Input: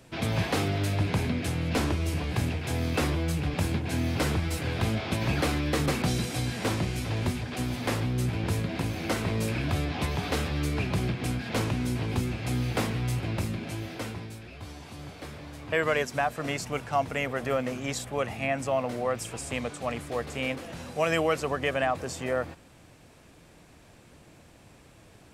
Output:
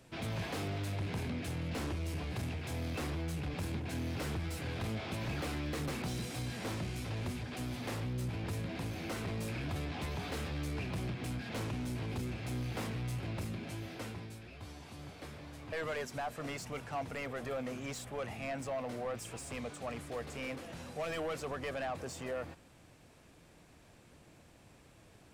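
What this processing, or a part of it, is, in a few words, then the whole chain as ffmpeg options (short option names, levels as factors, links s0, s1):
saturation between pre-emphasis and de-emphasis: -af "highshelf=f=2800:g=10.5,asoftclip=type=tanh:threshold=0.0501,highshelf=f=2800:g=-10.5,volume=0.501"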